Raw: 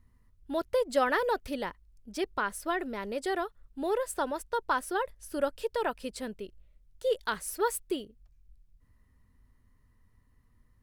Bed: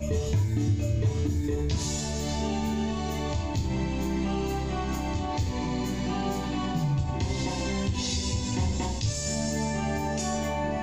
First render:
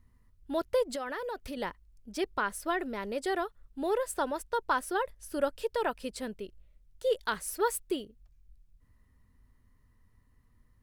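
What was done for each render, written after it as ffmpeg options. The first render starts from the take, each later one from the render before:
-filter_complex "[0:a]asettb=1/sr,asplit=3[a][b][c];[a]atrim=end=0.954[d];[b]atrim=start=0.95:end=1.57,asetpts=PTS-STARTPTS,afade=t=in:d=0.004:c=qsin,afade=t=out:st=0.616:d=0.004:c=qsin,acompressor=threshold=-36dB:ratio=3:attack=3.2:release=140:knee=1:detection=peak[e];[c]atrim=start=1.566[f];[d][e]acrossfade=d=0.004:c1=hsin:c2=qsin[g];[g][f]acrossfade=d=0.004:c1=qsin:c2=hsin"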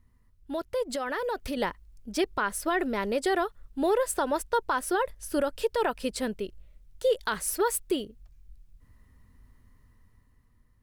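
-af "alimiter=limit=-24dB:level=0:latency=1:release=112,dynaudnorm=f=150:g=13:m=7dB"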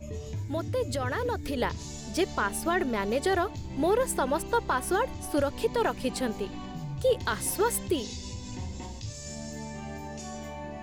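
-filter_complex "[1:a]volume=-10dB[a];[0:a][a]amix=inputs=2:normalize=0"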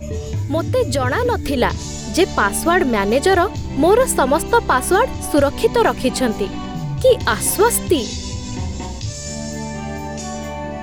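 -af "volume=12dB"

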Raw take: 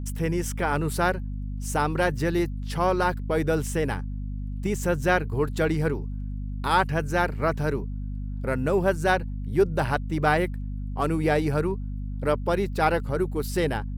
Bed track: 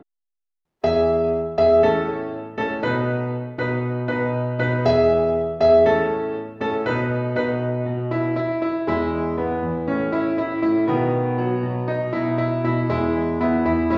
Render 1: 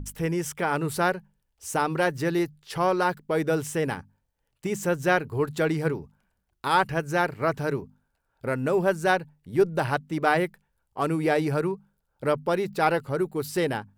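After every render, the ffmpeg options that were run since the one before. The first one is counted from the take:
-af "bandreject=f=50:t=h:w=6,bandreject=f=100:t=h:w=6,bandreject=f=150:t=h:w=6,bandreject=f=200:t=h:w=6,bandreject=f=250:t=h:w=6"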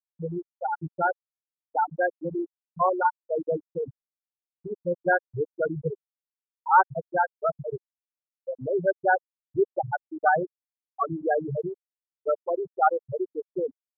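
-af "afftfilt=real='re*gte(hypot(re,im),0.355)':imag='im*gte(hypot(re,im),0.355)':win_size=1024:overlap=0.75,equalizer=f=250:t=o:w=1:g=-8,equalizer=f=1k:t=o:w=1:g=7,equalizer=f=4k:t=o:w=1:g=7"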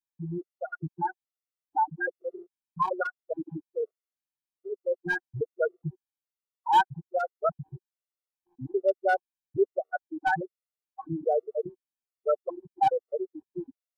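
-af "volume=13.5dB,asoftclip=hard,volume=-13.5dB,afftfilt=real='re*gt(sin(2*PI*1.2*pts/sr)*(1-2*mod(floor(b*sr/1024/370),2)),0)':imag='im*gt(sin(2*PI*1.2*pts/sr)*(1-2*mod(floor(b*sr/1024/370),2)),0)':win_size=1024:overlap=0.75"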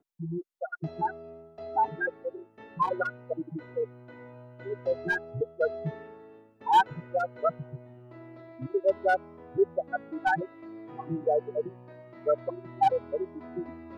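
-filter_complex "[1:a]volume=-25dB[a];[0:a][a]amix=inputs=2:normalize=0"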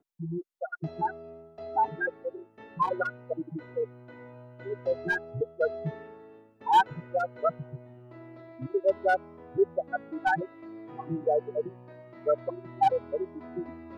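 -af anull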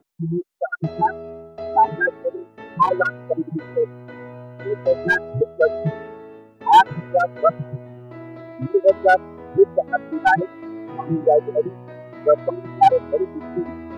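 -af "volume=10.5dB,alimiter=limit=-2dB:level=0:latency=1"

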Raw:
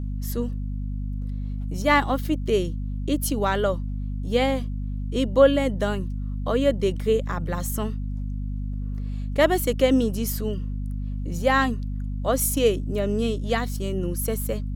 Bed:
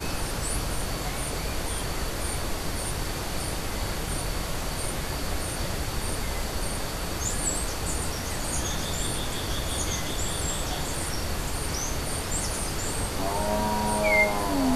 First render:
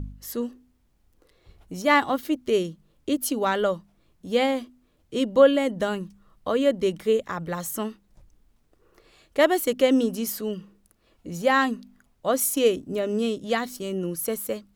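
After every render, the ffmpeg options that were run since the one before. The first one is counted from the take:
-af "bandreject=f=50:t=h:w=4,bandreject=f=100:t=h:w=4,bandreject=f=150:t=h:w=4,bandreject=f=200:t=h:w=4,bandreject=f=250:t=h:w=4"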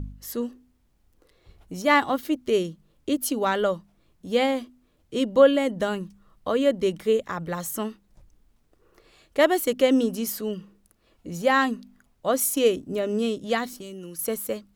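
-filter_complex "[0:a]asettb=1/sr,asplit=3[a][b][c];[a]atrim=end=13.734[d];[b]atrim=start=13.73:end=14.19,asetpts=PTS-STARTPTS,afade=t=in:d=0.004:c=qsin,afade=t=out:st=0.456:d=0.004:c=qsin,acrossover=split=480|1100|3000[e][f][g][h];[e]acompressor=threshold=-41dB:ratio=3[i];[f]acompressor=threshold=-55dB:ratio=3[j];[g]acompressor=threshold=-58dB:ratio=3[k];[h]acompressor=threshold=-44dB:ratio=3[l];[i][j][k][l]amix=inputs=4:normalize=0[m];[c]atrim=start=14.186[n];[d][m]acrossfade=d=0.004:c1=hsin:c2=qsin[o];[o][n]acrossfade=d=0.004:c1=qsin:c2=hsin"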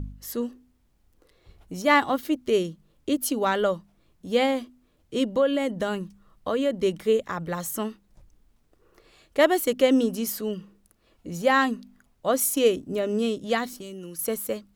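-filter_complex "[0:a]asettb=1/sr,asplit=3[a][b][c];[a]atrim=end=5.304[d];[b]atrim=start=5.3:end=6.73,asetpts=PTS-STARTPTS,afade=t=in:d=0.004:c=qsin,afade=t=out:st=1.426:d=0.004:c=qsin,acompressor=threshold=-22dB:ratio=2:attack=3.2:release=140:knee=1:detection=peak[e];[c]atrim=start=6.726[f];[d][e]acrossfade=d=0.004:c1=hsin:c2=qsin[g];[g][f]acrossfade=d=0.004:c1=qsin:c2=hsin"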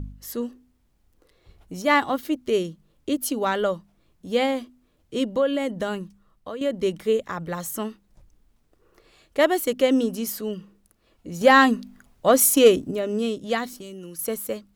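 -filter_complex "[0:a]asettb=1/sr,asplit=3[a][b][c];[a]atrim=end=11.414[d];[b]atrim=start=11.41:end=12.91,asetpts=PTS-STARTPTS,afade=t=in:d=0.004:c=qsin,afade=t=out:st=1.496:d=0.004:c=qsin,acontrast=78[e];[c]atrim=start=12.906[f];[d][e]acrossfade=d=0.004:c1=hsin:c2=qsin[g];[g][f]acrossfade=d=0.004:c1=qsin:c2=hsin,asplit=2[h][i];[h]atrim=end=6.61,asetpts=PTS-STARTPTS,afade=t=out:st=5.91:d=0.7:silence=0.334965[j];[i]atrim=start=6.61,asetpts=PTS-STARTPTS,afade=t=in:d=0.004:c=hsin:silence=0.334965[k];[j][k]concat=n=2:v=0:a=1"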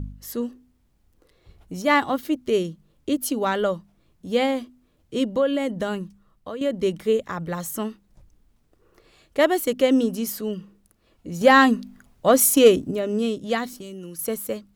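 -af "equalizer=f=120:w=0.51:g=3"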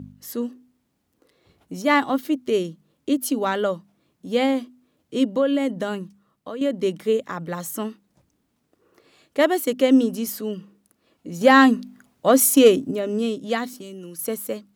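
-af "highpass=150,equalizer=f=270:w=6.8:g=5"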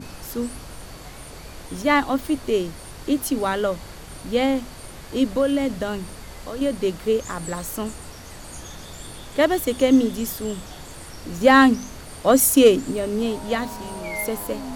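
-filter_complex "[1:a]volume=-9dB[a];[0:a][a]amix=inputs=2:normalize=0"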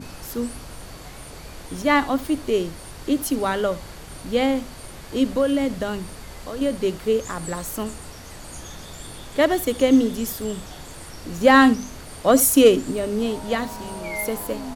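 -af "aecho=1:1:72:0.119"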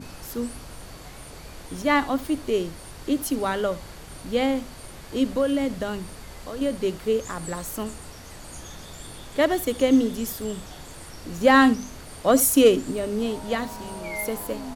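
-af "volume=-2.5dB"

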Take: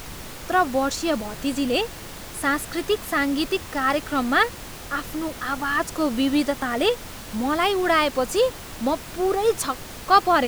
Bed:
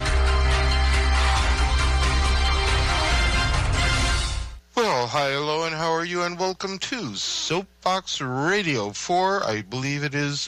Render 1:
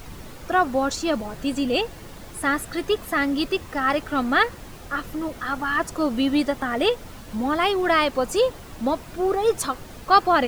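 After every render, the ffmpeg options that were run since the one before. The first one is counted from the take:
-af "afftdn=nr=8:nf=-38"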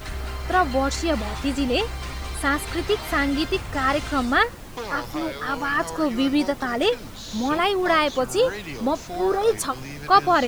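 -filter_complex "[1:a]volume=-11.5dB[a];[0:a][a]amix=inputs=2:normalize=0"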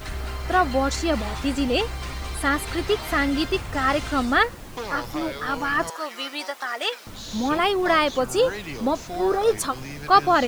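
-filter_complex "[0:a]asettb=1/sr,asplit=3[a][b][c];[a]atrim=end=5.904[d];[b]atrim=start=5.9:end=7.07,asetpts=PTS-STARTPTS,afade=t=in:d=0.004:c=qsin,afade=t=out:st=1.166:d=0.004:c=qsin,highpass=860[e];[c]atrim=start=7.066[f];[d][e]acrossfade=d=0.004:c1=hsin:c2=qsin[g];[g][f]acrossfade=d=0.004:c1=qsin:c2=hsin"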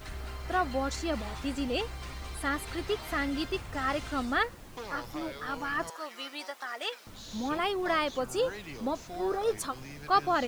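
-af "volume=-9dB"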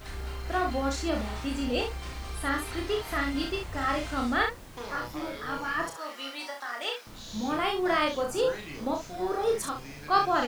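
-af "aecho=1:1:33|66:0.668|0.447"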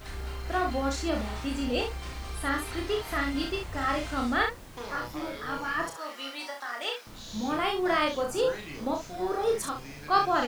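-af anull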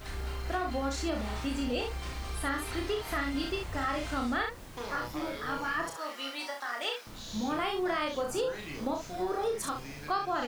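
-af "acompressor=threshold=-28dB:ratio=5"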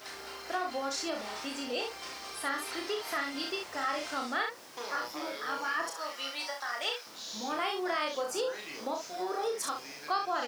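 -af "highpass=400,equalizer=f=5.3k:w=2.9:g=7.5"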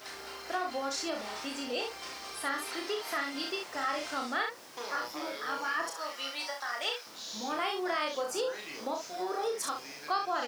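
-filter_complex "[0:a]asettb=1/sr,asplit=3[a][b][c];[a]atrim=end=2.694[d];[b]atrim=start=2.69:end=3.75,asetpts=PTS-STARTPTS,afade=t=in:d=0.004:c=qsin,afade=t=out:st=1.056:d=0.004:c=qsin,highpass=130[e];[c]atrim=start=3.746[f];[d][e]acrossfade=d=0.004:c1=hsin:c2=qsin[g];[g][f]acrossfade=d=0.004:c1=qsin:c2=hsin"

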